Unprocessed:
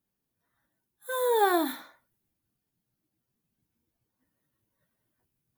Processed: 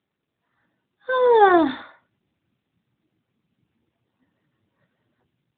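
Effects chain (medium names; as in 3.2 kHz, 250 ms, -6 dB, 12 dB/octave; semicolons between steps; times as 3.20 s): level rider gain up to 11.5 dB; AMR-NB 12.2 kbps 8 kHz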